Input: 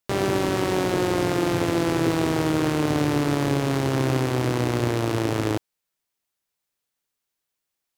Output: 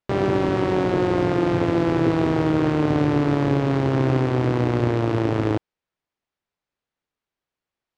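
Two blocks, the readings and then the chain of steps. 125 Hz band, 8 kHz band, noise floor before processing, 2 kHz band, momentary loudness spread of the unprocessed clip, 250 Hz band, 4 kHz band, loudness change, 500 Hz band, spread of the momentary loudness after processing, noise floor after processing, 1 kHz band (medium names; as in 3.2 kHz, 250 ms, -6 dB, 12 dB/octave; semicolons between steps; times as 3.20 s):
+3.0 dB, under -10 dB, -82 dBFS, -1.0 dB, 2 LU, +3.0 dB, -5.0 dB, +2.5 dB, +2.5 dB, 2 LU, under -85 dBFS, +1.5 dB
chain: tape spacing loss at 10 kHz 24 dB; trim +3.5 dB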